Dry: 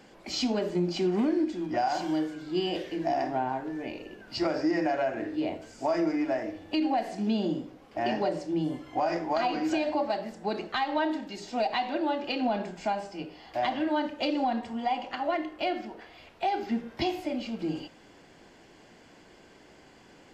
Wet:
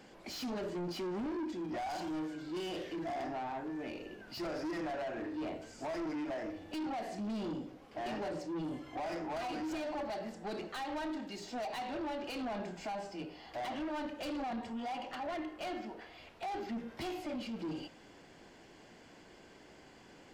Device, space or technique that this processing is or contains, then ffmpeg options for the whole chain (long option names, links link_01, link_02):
saturation between pre-emphasis and de-emphasis: -af "highshelf=frequency=2200:gain=8.5,asoftclip=type=tanh:threshold=-32.5dB,highshelf=frequency=2200:gain=-8.5,volume=-2.5dB"